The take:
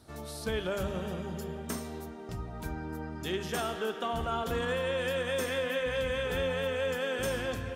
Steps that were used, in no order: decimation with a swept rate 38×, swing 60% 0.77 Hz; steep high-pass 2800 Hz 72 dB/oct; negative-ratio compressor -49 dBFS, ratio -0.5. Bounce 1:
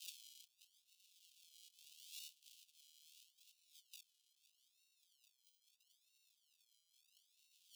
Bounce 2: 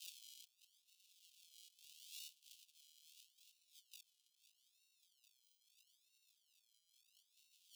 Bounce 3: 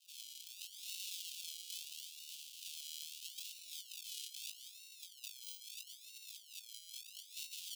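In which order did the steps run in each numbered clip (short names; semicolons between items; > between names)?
negative-ratio compressor > decimation with a swept rate > steep high-pass; decimation with a swept rate > negative-ratio compressor > steep high-pass; decimation with a swept rate > steep high-pass > negative-ratio compressor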